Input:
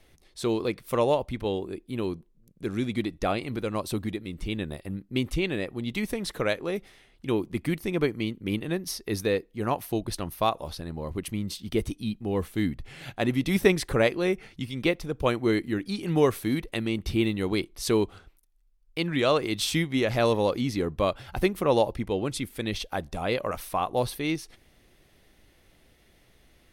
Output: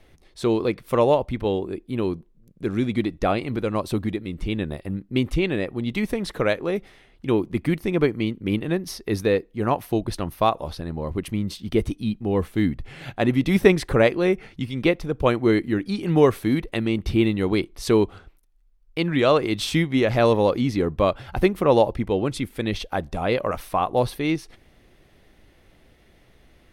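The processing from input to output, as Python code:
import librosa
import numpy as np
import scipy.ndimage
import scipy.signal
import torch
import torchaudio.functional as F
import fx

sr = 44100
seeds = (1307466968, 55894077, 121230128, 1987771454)

y = fx.high_shelf(x, sr, hz=3700.0, db=-9.0)
y = F.gain(torch.from_numpy(y), 5.5).numpy()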